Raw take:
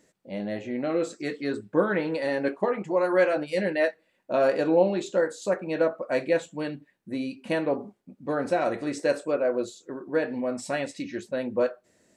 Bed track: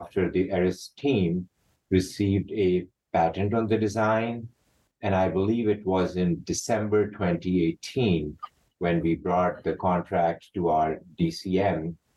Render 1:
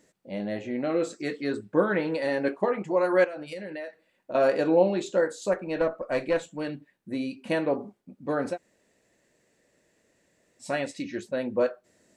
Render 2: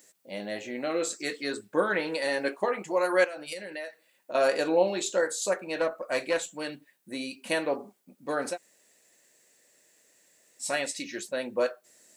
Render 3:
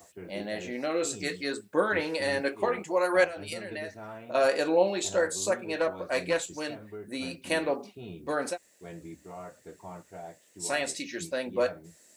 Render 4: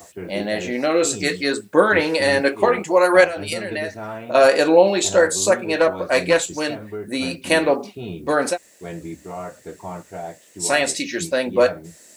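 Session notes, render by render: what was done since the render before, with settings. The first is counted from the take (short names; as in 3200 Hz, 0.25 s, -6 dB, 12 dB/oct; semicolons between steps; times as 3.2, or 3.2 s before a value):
3.24–4.35 compressor 10:1, threshold -33 dBFS; 5.53–6.69 tube stage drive 15 dB, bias 0.35; 8.53–10.64 room tone, crossfade 0.10 s
RIAA curve recording
add bed track -19.5 dB
gain +11 dB; limiter -2 dBFS, peak gain reduction 3 dB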